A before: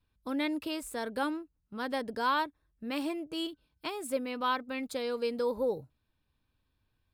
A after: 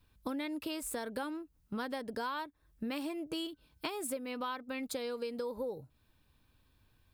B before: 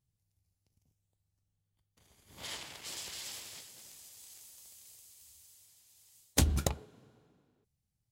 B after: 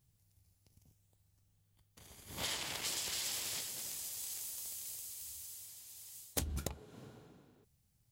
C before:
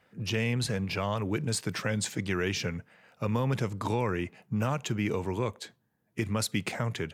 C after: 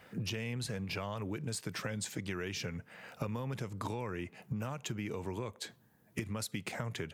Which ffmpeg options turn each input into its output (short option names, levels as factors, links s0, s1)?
-af "highshelf=f=10000:g=5.5,acompressor=threshold=0.00708:ratio=12,volume=2.51"